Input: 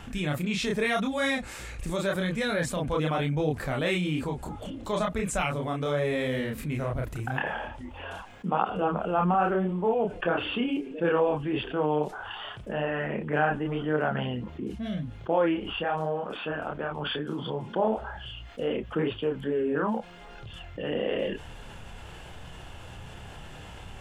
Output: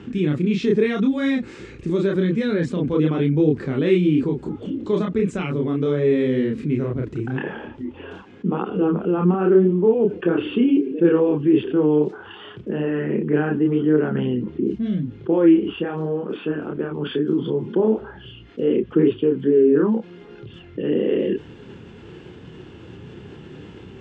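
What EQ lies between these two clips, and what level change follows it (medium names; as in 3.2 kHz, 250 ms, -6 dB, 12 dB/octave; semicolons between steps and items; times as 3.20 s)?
band-pass 140–7100 Hz; distance through air 81 m; resonant low shelf 500 Hz +9 dB, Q 3; 0.0 dB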